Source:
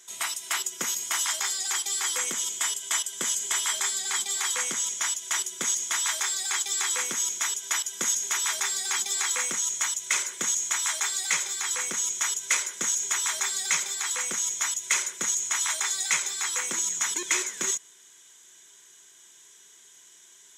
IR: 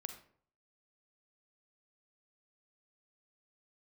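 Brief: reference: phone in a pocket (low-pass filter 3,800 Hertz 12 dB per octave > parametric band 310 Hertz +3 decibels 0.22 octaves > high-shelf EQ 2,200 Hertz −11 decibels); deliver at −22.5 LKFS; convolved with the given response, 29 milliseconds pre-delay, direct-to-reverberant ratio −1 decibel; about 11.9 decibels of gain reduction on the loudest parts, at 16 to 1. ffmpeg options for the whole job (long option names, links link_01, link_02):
-filter_complex "[0:a]acompressor=threshold=-32dB:ratio=16,asplit=2[link_01][link_02];[1:a]atrim=start_sample=2205,adelay=29[link_03];[link_02][link_03]afir=irnorm=-1:irlink=0,volume=4dB[link_04];[link_01][link_04]amix=inputs=2:normalize=0,lowpass=3800,equalizer=frequency=310:width_type=o:width=0.22:gain=3,highshelf=frequency=2200:gain=-11,volume=20dB"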